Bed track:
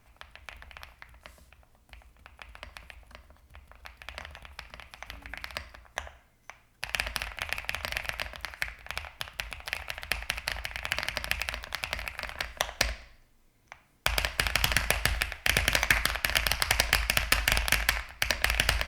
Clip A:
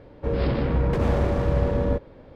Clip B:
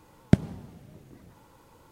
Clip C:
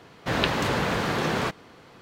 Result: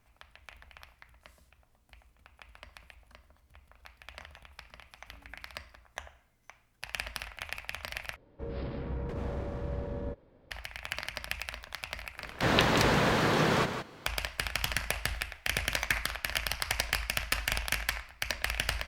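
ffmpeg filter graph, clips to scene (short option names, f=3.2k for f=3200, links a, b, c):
-filter_complex "[0:a]volume=-6dB[a];[3:a]aecho=1:1:167:0.376[b];[a]asplit=2[c][d];[c]atrim=end=8.164[e];[1:a]atrim=end=2.35,asetpts=PTS-STARTPTS,volume=-14dB[f];[d]atrim=start=10.506[g];[b]atrim=end=2.01,asetpts=PTS-STARTPTS,volume=-1dB,afade=t=in:d=0.1,afade=t=out:st=1.91:d=0.1,adelay=12150[h];[e][f]acrossfade=d=0.004:c1=hsin:c2=hsin[i];[i][g]acrossfade=d=0.004:c1=hsin:c2=hsin[j];[j][h]amix=inputs=2:normalize=0"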